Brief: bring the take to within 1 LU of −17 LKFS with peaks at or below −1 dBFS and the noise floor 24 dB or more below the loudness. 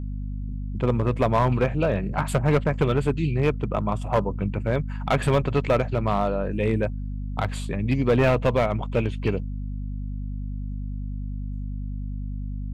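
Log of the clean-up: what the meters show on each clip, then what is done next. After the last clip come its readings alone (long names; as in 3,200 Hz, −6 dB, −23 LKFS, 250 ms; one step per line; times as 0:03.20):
share of clipped samples 0.8%; peaks flattened at −13.5 dBFS; mains hum 50 Hz; hum harmonics up to 250 Hz; level of the hum −28 dBFS; integrated loudness −25.5 LKFS; sample peak −13.5 dBFS; target loudness −17.0 LKFS
→ clipped peaks rebuilt −13.5 dBFS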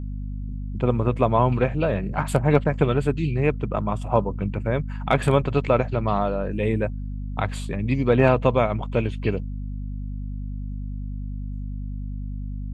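share of clipped samples 0.0%; mains hum 50 Hz; hum harmonics up to 250 Hz; level of the hum −28 dBFS
→ mains-hum notches 50/100/150/200/250 Hz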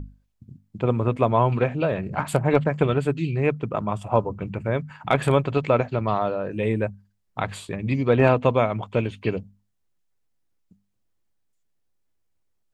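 mains hum none found; integrated loudness −23.5 LKFS; sample peak −4.5 dBFS; target loudness −17.0 LKFS
→ level +6.5 dB
brickwall limiter −1 dBFS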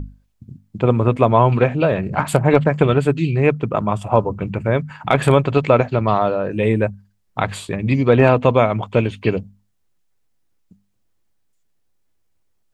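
integrated loudness −17.5 LKFS; sample peak −1.0 dBFS; background noise floor −65 dBFS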